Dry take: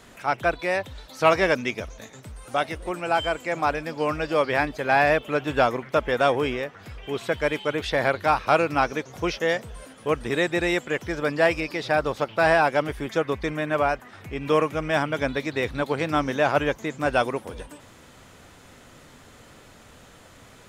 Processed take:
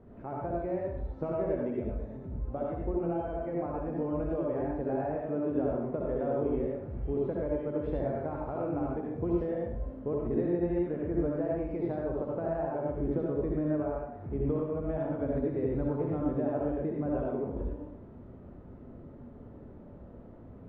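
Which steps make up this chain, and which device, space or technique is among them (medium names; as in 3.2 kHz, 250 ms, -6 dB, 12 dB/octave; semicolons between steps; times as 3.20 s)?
television next door (compression 4:1, threshold -28 dBFS, peak gain reduction 13 dB; low-pass 440 Hz 12 dB/octave; reverberation RT60 0.70 s, pre-delay 59 ms, DRR -3 dB); 5.15–5.70 s: high-pass 110 Hz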